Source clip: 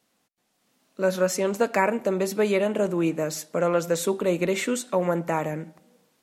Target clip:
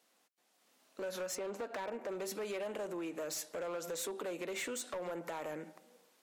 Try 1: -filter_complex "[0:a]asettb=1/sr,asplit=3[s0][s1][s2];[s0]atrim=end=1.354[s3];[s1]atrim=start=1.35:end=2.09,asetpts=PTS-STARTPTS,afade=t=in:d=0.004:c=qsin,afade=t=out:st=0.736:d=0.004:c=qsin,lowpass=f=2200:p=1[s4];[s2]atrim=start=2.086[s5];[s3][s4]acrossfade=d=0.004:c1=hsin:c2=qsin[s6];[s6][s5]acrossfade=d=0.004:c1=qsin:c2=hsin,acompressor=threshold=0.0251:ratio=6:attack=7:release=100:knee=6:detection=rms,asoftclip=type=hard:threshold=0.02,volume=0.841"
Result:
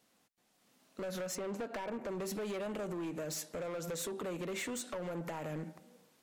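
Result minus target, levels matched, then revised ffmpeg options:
250 Hz band +3.5 dB
-filter_complex "[0:a]asettb=1/sr,asplit=3[s0][s1][s2];[s0]atrim=end=1.354[s3];[s1]atrim=start=1.35:end=2.09,asetpts=PTS-STARTPTS,afade=t=in:d=0.004:c=qsin,afade=t=out:st=0.736:d=0.004:c=qsin,lowpass=f=2200:p=1[s4];[s2]atrim=start=2.086[s5];[s3][s4]acrossfade=d=0.004:c1=hsin:c2=qsin[s6];[s6][s5]acrossfade=d=0.004:c1=qsin:c2=hsin,acompressor=threshold=0.0251:ratio=6:attack=7:release=100:knee=6:detection=rms,highpass=350,asoftclip=type=hard:threshold=0.02,volume=0.841"

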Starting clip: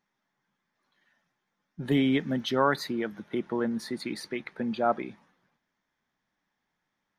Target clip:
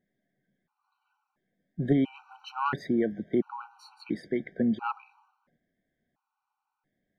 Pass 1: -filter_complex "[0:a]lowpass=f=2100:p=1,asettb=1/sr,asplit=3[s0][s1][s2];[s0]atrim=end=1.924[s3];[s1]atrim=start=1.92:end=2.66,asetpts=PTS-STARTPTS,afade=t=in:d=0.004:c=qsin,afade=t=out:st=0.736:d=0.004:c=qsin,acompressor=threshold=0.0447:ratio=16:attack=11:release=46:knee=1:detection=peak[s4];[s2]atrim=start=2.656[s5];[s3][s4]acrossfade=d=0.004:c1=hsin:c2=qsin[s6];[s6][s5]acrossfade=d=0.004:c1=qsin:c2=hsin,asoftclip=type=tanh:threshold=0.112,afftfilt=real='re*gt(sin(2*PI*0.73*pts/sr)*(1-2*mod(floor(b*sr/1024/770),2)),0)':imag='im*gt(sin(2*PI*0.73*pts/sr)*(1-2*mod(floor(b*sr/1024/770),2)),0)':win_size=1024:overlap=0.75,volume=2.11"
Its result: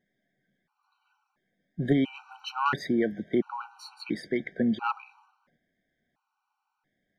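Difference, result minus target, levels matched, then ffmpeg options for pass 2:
2 kHz band +4.5 dB
-filter_complex "[0:a]lowpass=f=780:p=1,asettb=1/sr,asplit=3[s0][s1][s2];[s0]atrim=end=1.924[s3];[s1]atrim=start=1.92:end=2.66,asetpts=PTS-STARTPTS,afade=t=in:d=0.004:c=qsin,afade=t=out:st=0.736:d=0.004:c=qsin,acompressor=threshold=0.0447:ratio=16:attack=11:release=46:knee=1:detection=peak[s4];[s2]atrim=start=2.656[s5];[s3][s4]acrossfade=d=0.004:c1=hsin:c2=qsin[s6];[s6][s5]acrossfade=d=0.004:c1=qsin:c2=hsin,asoftclip=type=tanh:threshold=0.112,afftfilt=real='re*gt(sin(2*PI*0.73*pts/sr)*(1-2*mod(floor(b*sr/1024/770),2)),0)':imag='im*gt(sin(2*PI*0.73*pts/sr)*(1-2*mod(floor(b*sr/1024/770),2)),0)':win_size=1024:overlap=0.75,volume=2.11"

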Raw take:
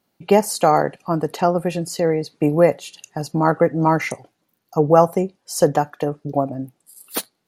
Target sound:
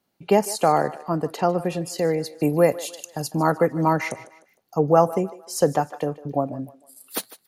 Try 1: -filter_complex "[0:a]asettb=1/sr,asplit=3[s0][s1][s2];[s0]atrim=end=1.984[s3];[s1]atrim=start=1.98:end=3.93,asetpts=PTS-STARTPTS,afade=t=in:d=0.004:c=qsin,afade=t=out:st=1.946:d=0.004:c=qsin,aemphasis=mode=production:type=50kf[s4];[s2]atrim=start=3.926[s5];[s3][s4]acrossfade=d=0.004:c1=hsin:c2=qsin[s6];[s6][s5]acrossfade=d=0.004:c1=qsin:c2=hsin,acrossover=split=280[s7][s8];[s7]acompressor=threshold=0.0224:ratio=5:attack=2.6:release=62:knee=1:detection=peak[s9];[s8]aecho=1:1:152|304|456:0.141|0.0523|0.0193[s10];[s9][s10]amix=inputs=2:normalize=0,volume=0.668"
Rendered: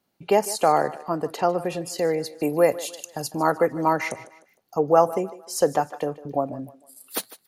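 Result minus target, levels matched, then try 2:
compression: peak gain reduction +14.5 dB
-filter_complex "[0:a]asettb=1/sr,asplit=3[s0][s1][s2];[s0]atrim=end=1.984[s3];[s1]atrim=start=1.98:end=3.93,asetpts=PTS-STARTPTS,afade=t=in:d=0.004:c=qsin,afade=t=out:st=1.946:d=0.004:c=qsin,aemphasis=mode=production:type=50kf[s4];[s2]atrim=start=3.926[s5];[s3][s4]acrossfade=d=0.004:c1=hsin:c2=qsin[s6];[s6][s5]acrossfade=d=0.004:c1=qsin:c2=hsin,acrossover=split=280[s7][s8];[s8]aecho=1:1:152|304|456:0.141|0.0523|0.0193[s9];[s7][s9]amix=inputs=2:normalize=0,volume=0.668"

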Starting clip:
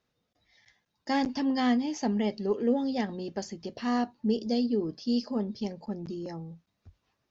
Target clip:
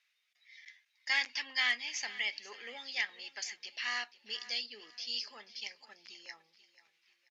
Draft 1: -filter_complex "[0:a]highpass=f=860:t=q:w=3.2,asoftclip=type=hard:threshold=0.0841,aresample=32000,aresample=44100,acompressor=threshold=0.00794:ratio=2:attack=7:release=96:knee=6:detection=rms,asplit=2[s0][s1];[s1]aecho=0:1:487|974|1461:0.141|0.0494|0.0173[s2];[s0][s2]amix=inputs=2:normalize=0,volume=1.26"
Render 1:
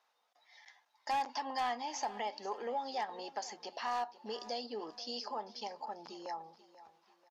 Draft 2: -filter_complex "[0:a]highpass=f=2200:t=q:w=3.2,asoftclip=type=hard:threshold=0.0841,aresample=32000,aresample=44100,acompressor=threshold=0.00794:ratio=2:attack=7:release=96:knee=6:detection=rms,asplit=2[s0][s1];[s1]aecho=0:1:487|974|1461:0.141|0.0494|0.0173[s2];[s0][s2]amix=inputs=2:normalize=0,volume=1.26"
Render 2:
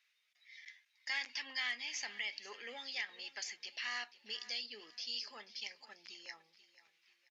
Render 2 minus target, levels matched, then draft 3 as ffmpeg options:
compression: peak gain reduction +8.5 dB
-filter_complex "[0:a]highpass=f=2200:t=q:w=3.2,asoftclip=type=hard:threshold=0.0841,aresample=32000,aresample=44100,asplit=2[s0][s1];[s1]aecho=0:1:487|974|1461:0.141|0.0494|0.0173[s2];[s0][s2]amix=inputs=2:normalize=0,volume=1.26"

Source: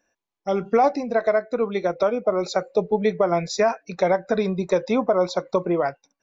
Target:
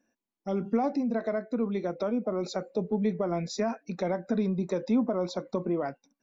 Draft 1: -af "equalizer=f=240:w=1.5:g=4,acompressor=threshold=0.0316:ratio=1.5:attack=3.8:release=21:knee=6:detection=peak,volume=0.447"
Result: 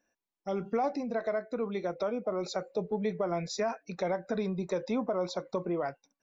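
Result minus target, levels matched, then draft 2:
250 Hz band -3.5 dB
-af "equalizer=f=240:w=1.5:g=15.5,acompressor=threshold=0.0316:ratio=1.5:attack=3.8:release=21:knee=6:detection=peak,volume=0.447"

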